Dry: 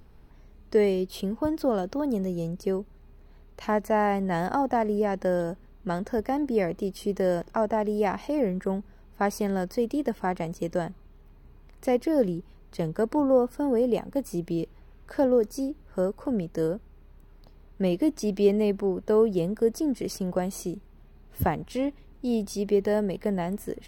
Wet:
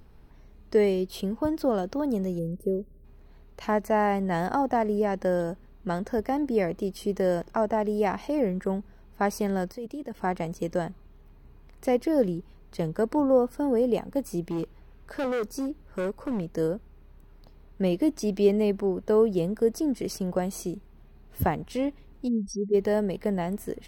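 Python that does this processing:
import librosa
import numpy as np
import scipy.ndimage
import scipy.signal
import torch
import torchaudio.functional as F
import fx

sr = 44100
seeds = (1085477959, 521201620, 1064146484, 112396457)

y = fx.spec_box(x, sr, start_s=2.39, length_s=0.66, low_hz=640.0, high_hz=8300.0, gain_db=-23)
y = fx.level_steps(y, sr, step_db=17, at=(9.72, 10.19))
y = fx.clip_hard(y, sr, threshold_db=-25.5, at=(14.48, 16.47))
y = fx.spec_expand(y, sr, power=3.2, at=(22.27, 22.73), fade=0.02)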